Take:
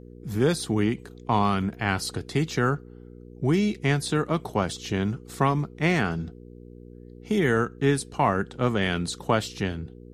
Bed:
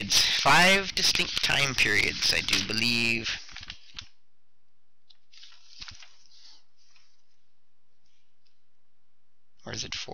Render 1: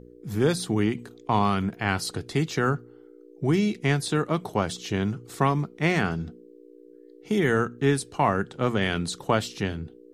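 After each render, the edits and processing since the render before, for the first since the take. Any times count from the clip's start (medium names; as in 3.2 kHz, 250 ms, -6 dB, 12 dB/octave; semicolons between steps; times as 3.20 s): de-hum 60 Hz, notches 4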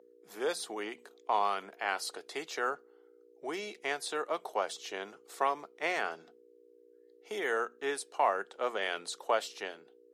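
ladder high-pass 440 Hz, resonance 30%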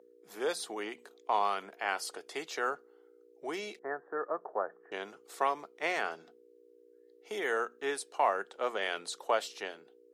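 1.82–2.34 s: band-stop 4 kHz, Q 7.6; 3.79–4.92 s: rippled Chebyshev low-pass 1.8 kHz, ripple 3 dB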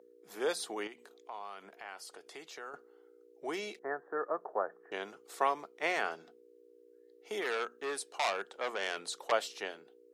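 0.87–2.74 s: compression 2:1, threshold -52 dBFS; 7.41–9.32 s: transformer saturation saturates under 3.5 kHz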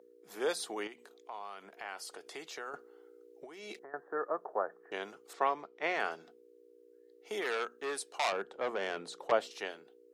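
1.77–3.94 s: compressor with a negative ratio -45 dBFS; 5.33–6.00 s: distance through air 130 m; 8.32–9.51 s: tilt EQ -3 dB/octave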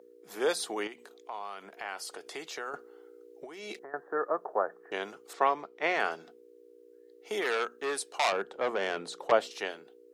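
trim +4.5 dB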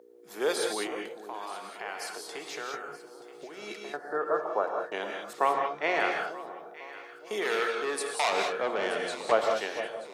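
echo whose repeats swap between lows and highs 464 ms, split 990 Hz, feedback 59%, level -11.5 dB; gated-style reverb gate 220 ms rising, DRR 2 dB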